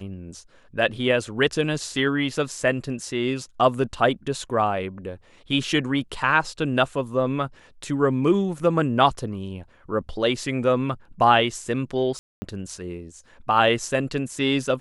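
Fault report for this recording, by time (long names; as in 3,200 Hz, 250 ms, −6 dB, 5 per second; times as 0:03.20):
0:12.19–0:12.42: drop-out 230 ms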